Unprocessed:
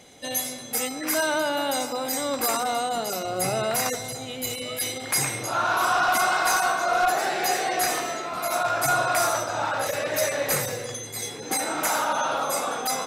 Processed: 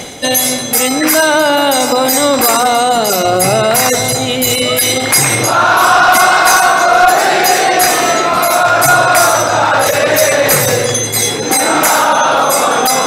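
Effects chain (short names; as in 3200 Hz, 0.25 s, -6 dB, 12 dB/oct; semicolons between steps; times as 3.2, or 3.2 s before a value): reverse; upward compressor, threshold -31 dBFS; reverse; maximiser +20.5 dB; gain -1 dB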